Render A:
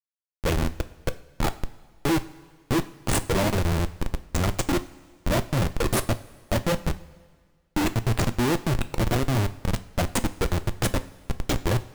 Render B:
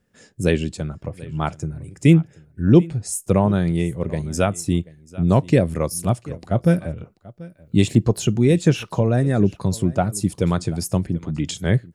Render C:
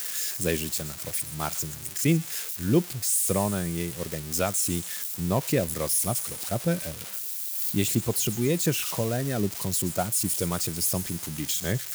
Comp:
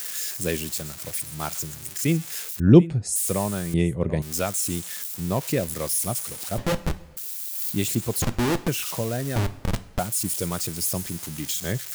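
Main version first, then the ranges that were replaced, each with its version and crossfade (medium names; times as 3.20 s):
C
2.60–3.16 s: from B
3.74–4.22 s: from B
6.58–7.17 s: from A
8.22–8.68 s: from A
9.36–9.99 s: from A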